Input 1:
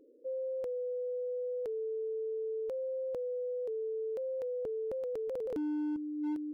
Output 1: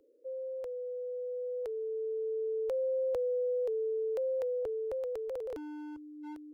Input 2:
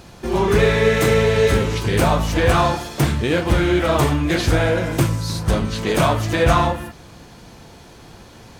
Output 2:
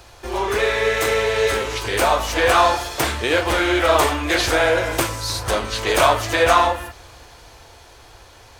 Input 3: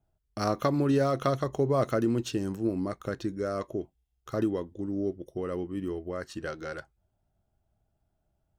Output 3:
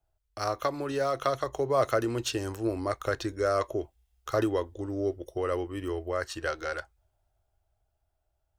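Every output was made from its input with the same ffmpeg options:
ffmpeg -i in.wav -filter_complex "[0:a]acrossover=split=110|2900[link_01][link_02][link_03];[link_01]acompressor=threshold=-32dB:ratio=6[link_04];[link_02]highpass=500[link_05];[link_04][link_05][link_03]amix=inputs=3:normalize=0,dynaudnorm=framelen=190:gausssize=21:maxgain=8dB" out.wav

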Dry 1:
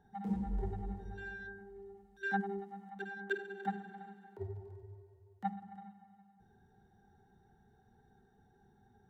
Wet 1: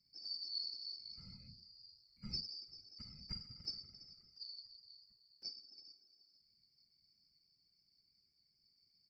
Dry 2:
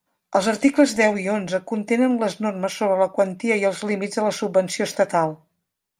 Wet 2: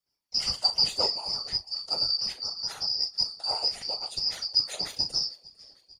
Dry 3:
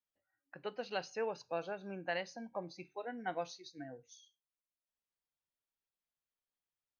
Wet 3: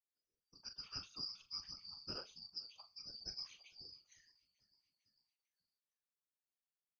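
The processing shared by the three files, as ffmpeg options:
ffmpeg -i in.wav -filter_complex "[0:a]afftfilt=real='real(if(lt(b,272),68*(eq(floor(b/68),0)*1+eq(floor(b/68),1)*2+eq(floor(b/68),2)*3+eq(floor(b/68),3)*0)+mod(b,68),b),0)':imag='imag(if(lt(b,272),68*(eq(floor(b/68),0)*1+eq(floor(b/68),1)*2+eq(floor(b/68),2)*3+eq(floor(b/68),3)*0)+mod(b,68),b),0)':win_size=2048:overlap=0.75,asplit=2[link_01][link_02];[link_02]adelay=39,volume=-10.5dB[link_03];[link_01][link_03]amix=inputs=2:normalize=0,asplit=5[link_04][link_05][link_06][link_07][link_08];[link_05]adelay=448,afreqshift=-54,volume=-24dB[link_09];[link_06]adelay=896,afreqshift=-108,volume=-28dB[link_10];[link_07]adelay=1344,afreqshift=-162,volume=-32dB[link_11];[link_08]adelay=1792,afreqshift=-216,volume=-36dB[link_12];[link_04][link_09][link_10][link_11][link_12]amix=inputs=5:normalize=0,afftfilt=real='hypot(re,im)*cos(2*PI*random(0))':imag='hypot(re,im)*sin(2*PI*random(1))':win_size=512:overlap=0.75,volume=-3.5dB" out.wav

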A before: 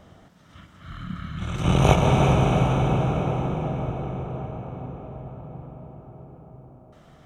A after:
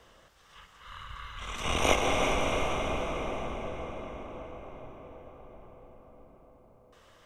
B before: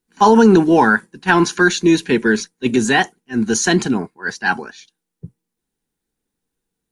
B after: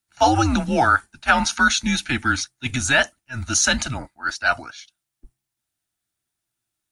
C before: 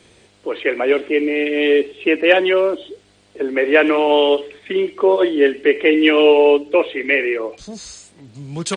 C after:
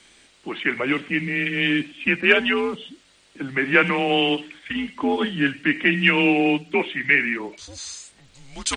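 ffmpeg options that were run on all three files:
ffmpeg -i in.wav -af "tiltshelf=frequency=650:gain=-7.5,afreqshift=-130,volume=-6dB" out.wav

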